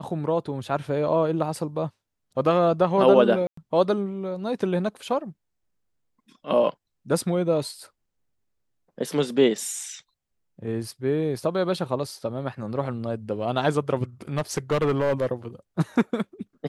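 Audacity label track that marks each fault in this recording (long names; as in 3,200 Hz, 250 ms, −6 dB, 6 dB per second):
3.470000	3.570000	drop-out 104 ms
14.380000	15.270000	clipping −18 dBFS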